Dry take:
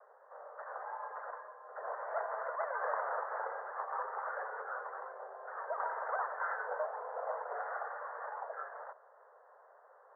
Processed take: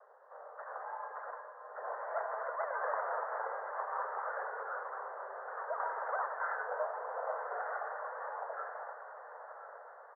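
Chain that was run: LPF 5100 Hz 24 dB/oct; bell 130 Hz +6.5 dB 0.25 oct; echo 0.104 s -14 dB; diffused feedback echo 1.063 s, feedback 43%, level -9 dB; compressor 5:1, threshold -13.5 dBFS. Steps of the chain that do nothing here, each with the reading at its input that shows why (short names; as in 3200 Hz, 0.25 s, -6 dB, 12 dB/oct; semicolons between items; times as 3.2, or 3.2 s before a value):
LPF 5100 Hz: input band ends at 2000 Hz; bell 130 Hz: input band starts at 360 Hz; compressor, threshold -13.5 dBFS: input peak -22.5 dBFS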